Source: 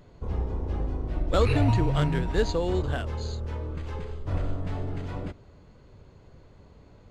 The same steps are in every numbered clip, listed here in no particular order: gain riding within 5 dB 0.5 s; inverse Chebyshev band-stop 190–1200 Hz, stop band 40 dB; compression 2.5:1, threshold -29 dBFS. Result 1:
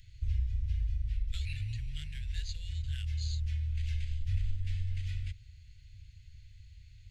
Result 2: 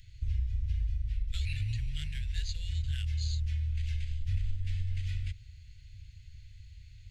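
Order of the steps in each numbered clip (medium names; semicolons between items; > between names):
compression > gain riding > inverse Chebyshev band-stop; gain riding > inverse Chebyshev band-stop > compression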